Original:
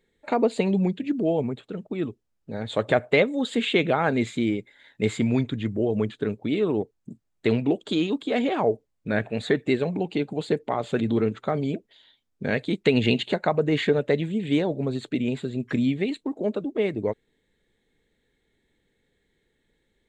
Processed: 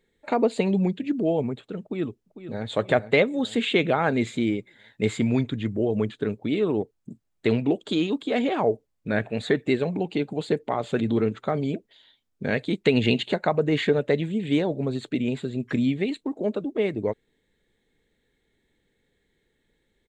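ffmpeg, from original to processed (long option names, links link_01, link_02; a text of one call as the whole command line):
ffmpeg -i in.wav -filter_complex "[0:a]asplit=2[link_01][link_02];[link_02]afade=type=in:start_time=1.81:duration=0.01,afade=type=out:start_time=2.69:duration=0.01,aecho=0:1:450|900|1350|1800|2250|2700:0.251189|0.138154|0.0759846|0.0417915|0.0229853|0.0126419[link_03];[link_01][link_03]amix=inputs=2:normalize=0" out.wav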